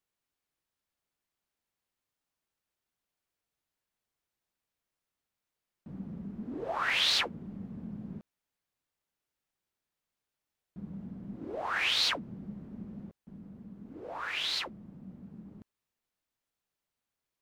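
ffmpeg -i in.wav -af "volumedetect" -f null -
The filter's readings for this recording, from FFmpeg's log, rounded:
mean_volume: -39.8 dB
max_volume: -14.3 dB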